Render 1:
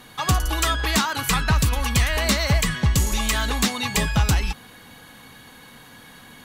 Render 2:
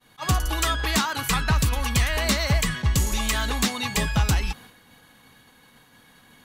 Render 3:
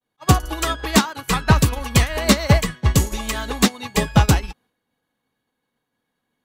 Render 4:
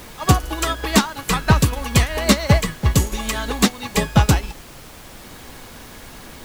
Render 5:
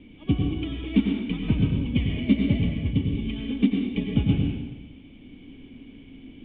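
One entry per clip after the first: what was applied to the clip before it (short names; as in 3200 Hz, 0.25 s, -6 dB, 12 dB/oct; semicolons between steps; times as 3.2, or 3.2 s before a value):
expander -39 dBFS; attack slew limiter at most 440 dB/s; gain -2 dB
bell 420 Hz +8 dB 2.2 oct; upward expander 2.5:1, over -37 dBFS; gain +7.5 dB
upward compressor, threshold -19 dBFS; added noise pink -40 dBFS
vocal tract filter i; plate-style reverb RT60 1.1 s, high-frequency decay 0.9×, pre-delay 80 ms, DRR 0.5 dB; gain +2 dB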